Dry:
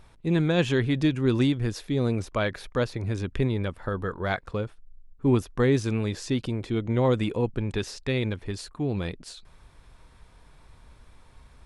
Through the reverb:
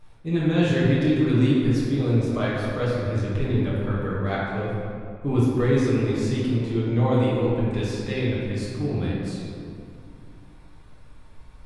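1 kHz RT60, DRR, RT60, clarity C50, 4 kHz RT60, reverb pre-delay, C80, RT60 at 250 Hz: 2.1 s, -8.0 dB, 2.4 s, -2.0 dB, 1.3 s, 5 ms, 0.5 dB, 3.3 s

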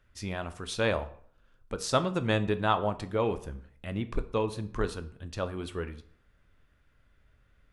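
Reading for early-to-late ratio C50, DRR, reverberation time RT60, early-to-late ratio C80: 15.5 dB, 10.5 dB, 0.55 s, 18.5 dB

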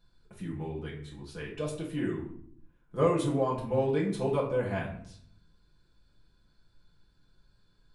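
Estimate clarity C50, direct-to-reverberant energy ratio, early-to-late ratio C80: 6.0 dB, -4.5 dB, 10.5 dB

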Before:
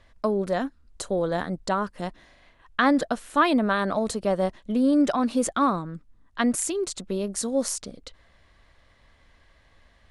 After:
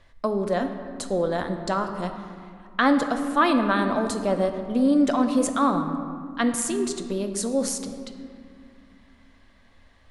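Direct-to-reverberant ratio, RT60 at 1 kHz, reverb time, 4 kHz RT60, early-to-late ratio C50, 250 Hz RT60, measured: 6.0 dB, 2.2 s, 2.2 s, 1.2 s, 8.0 dB, 3.3 s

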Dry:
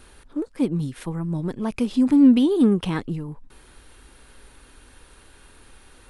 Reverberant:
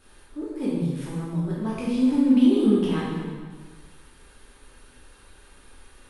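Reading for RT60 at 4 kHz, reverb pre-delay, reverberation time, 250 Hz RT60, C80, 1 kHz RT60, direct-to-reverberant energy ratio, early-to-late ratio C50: 1.4 s, 6 ms, 1.5 s, 1.5 s, 0.5 dB, 1.5 s, -7.5 dB, -2.0 dB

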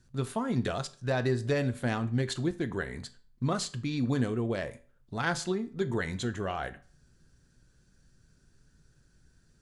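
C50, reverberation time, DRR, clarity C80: 18.0 dB, 0.40 s, 10.5 dB, 22.5 dB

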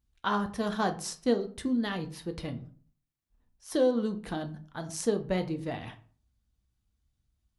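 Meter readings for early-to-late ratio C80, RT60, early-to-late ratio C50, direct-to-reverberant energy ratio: 19.5 dB, 0.45 s, 15.5 dB, 6.0 dB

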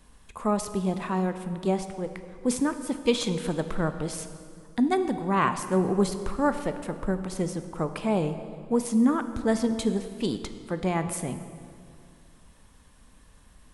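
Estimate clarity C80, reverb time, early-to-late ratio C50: 11.0 dB, 2.3 s, 10.0 dB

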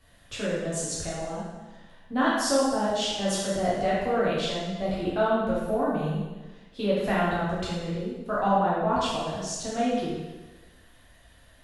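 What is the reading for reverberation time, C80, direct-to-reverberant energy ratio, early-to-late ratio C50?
1.2 s, 1.5 dB, -8.0 dB, -1.5 dB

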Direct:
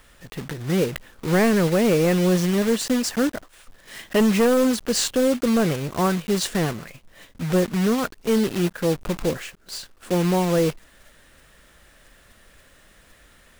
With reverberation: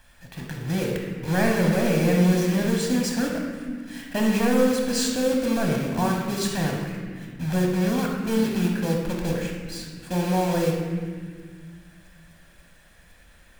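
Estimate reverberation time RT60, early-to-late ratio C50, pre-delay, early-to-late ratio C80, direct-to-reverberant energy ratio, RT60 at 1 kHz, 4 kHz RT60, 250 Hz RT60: 1.8 s, 2.0 dB, 12 ms, 4.0 dB, 0.5 dB, 1.7 s, 1.5 s, 2.6 s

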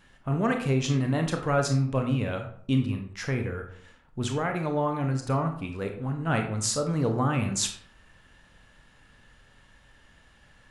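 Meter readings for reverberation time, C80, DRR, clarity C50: 0.60 s, 11.5 dB, 4.0 dB, 7.5 dB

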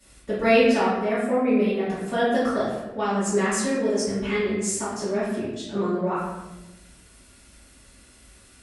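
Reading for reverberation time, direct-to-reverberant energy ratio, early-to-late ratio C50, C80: 1.1 s, -13.5 dB, -0.5 dB, 3.0 dB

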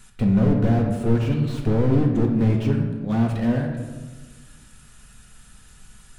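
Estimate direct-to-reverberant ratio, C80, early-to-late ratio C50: 1.5 dB, 6.5 dB, 4.5 dB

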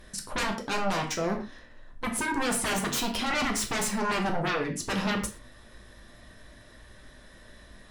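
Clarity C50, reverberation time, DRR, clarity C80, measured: 8.5 dB, not exponential, 2.0 dB, 12.0 dB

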